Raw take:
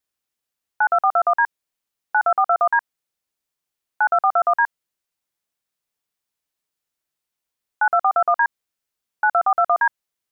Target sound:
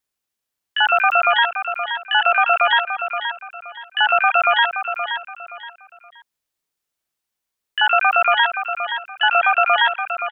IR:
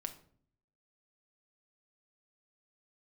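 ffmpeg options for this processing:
-filter_complex "[0:a]aecho=1:1:523|1046|1569:0.376|0.109|0.0316,asplit=2[a][b];[b]asetrate=88200,aresample=44100,atempo=0.5,volume=-2dB[c];[a][c]amix=inputs=2:normalize=0"

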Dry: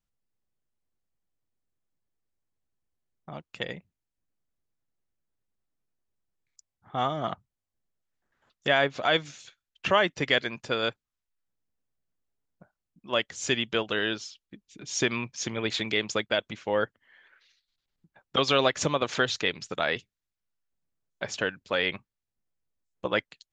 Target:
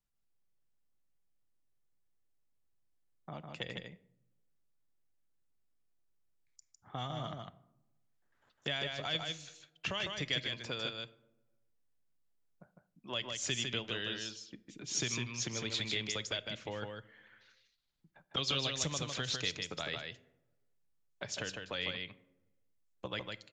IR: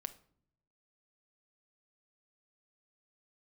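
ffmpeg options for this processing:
-filter_complex "[0:a]asplit=2[a][b];[1:a]atrim=start_sample=2205,asetrate=39249,aresample=44100[c];[b][c]afir=irnorm=-1:irlink=0,volume=1dB[d];[a][d]amix=inputs=2:normalize=0,acrossover=split=160|3000[e][f][g];[f]acompressor=threshold=-32dB:ratio=6[h];[e][h][g]amix=inputs=3:normalize=0,aecho=1:1:154:0.596,volume=-9dB"

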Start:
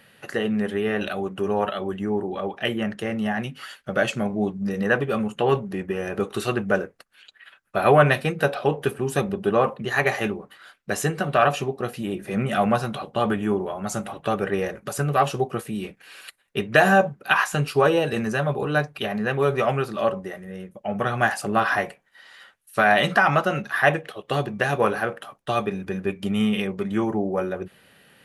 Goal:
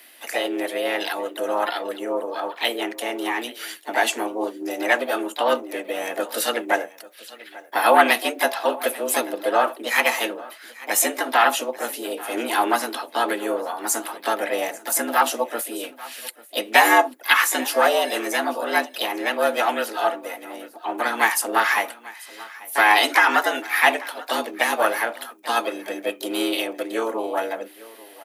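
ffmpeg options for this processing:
-filter_complex "[0:a]aemphasis=mode=production:type=bsi,asplit=2[a][b];[b]aecho=0:1:841:0.1[c];[a][c]amix=inputs=2:normalize=0,afreqshift=110,asplit=2[d][e];[e]asetrate=55563,aresample=44100,atempo=0.793701,volume=-6dB[f];[d][f]amix=inputs=2:normalize=0,volume=1dB"

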